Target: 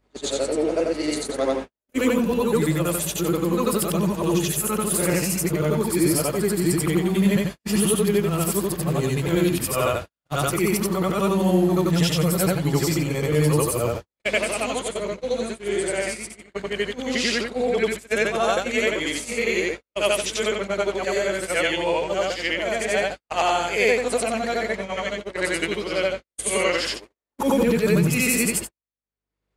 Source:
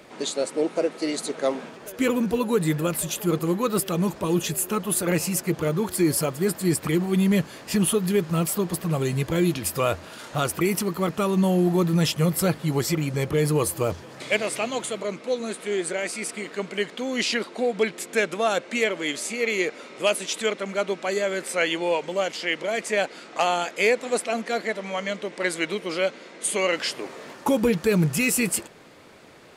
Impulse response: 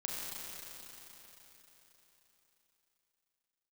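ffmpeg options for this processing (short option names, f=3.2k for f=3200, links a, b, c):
-af "afftfilt=real='re':imag='-im':win_size=8192:overlap=0.75,aeval=exprs='val(0)+0.00316*(sin(2*PI*50*n/s)+sin(2*PI*2*50*n/s)/2+sin(2*PI*3*50*n/s)/3+sin(2*PI*4*50*n/s)/4+sin(2*PI*5*50*n/s)/5)':c=same,agate=range=-59dB:threshold=-34dB:ratio=16:detection=peak,acompressor=mode=upward:threshold=-48dB:ratio=2.5,volume=6.5dB"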